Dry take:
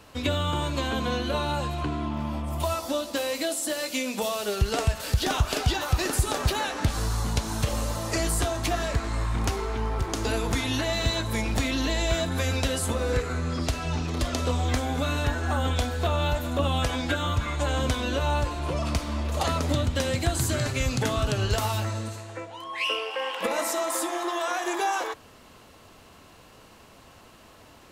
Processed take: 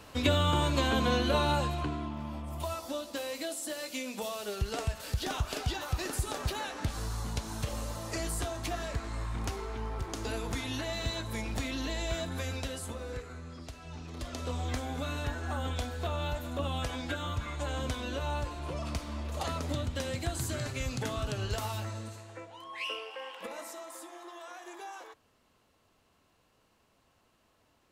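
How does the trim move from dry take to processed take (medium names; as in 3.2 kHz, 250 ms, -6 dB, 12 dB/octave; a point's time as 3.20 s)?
1.52 s 0 dB
2.16 s -8.5 dB
12.33 s -8.5 dB
13.73 s -18 dB
14.59 s -8.5 dB
22.78 s -8.5 dB
23.95 s -18 dB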